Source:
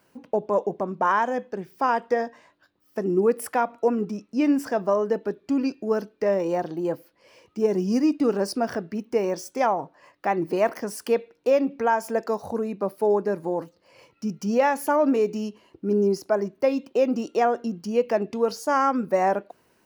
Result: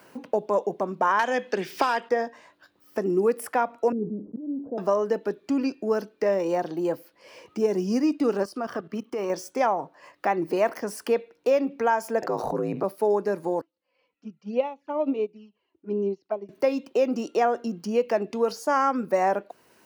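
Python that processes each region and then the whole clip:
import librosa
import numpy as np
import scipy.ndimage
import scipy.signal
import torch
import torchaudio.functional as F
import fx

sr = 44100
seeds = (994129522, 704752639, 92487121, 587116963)

y = fx.chain(x, sr, fx.weighting(curve='D'),
    fx.clip_hard(threshold_db=-14.5),
    fx.band_squash(depth_pct=100), at=(1.19, 2.09))
y = fx.chain(y, sr, fx.cheby2_lowpass(hz=2200.0, order=4, stop_db=70),
    fx.auto_swell(attack_ms=613.0),
    fx.sustainer(db_per_s=130.0), at=(3.92, 4.78))
y = fx.chain(y, sr, fx.level_steps(step_db=15),
    fx.small_body(hz=(1200.0, 3100.0), ring_ms=20, db=12), at=(8.43, 9.3))
y = fx.chain(y, sr, fx.high_shelf(hz=2700.0, db=-10.0),
    fx.ring_mod(carrier_hz=56.0),
    fx.env_flatten(amount_pct=70), at=(12.22, 12.84))
y = fx.chain(y, sr, fx.lowpass(hz=3800.0, slope=24),
    fx.env_flanger(rest_ms=4.3, full_db=-20.0),
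    fx.upward_expand(threshold_db=-32.0, expansion=2.5), at=(13.61, 16.49))
y = fx.low_shelf(y, sr, hz=150.0, db=-9.5)
y = fx.band_squash(y, sr, depth_pct=40)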